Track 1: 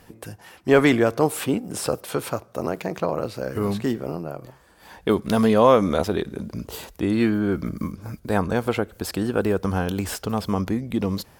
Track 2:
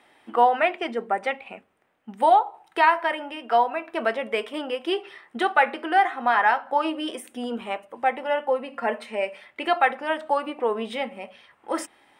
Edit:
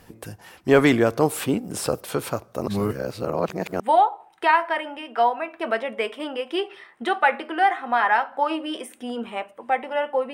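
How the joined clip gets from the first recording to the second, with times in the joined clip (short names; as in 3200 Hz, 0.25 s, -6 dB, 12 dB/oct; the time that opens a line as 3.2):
track 1
2.68–3.8 reverse
3.8 switch to track 2 from 2.14 s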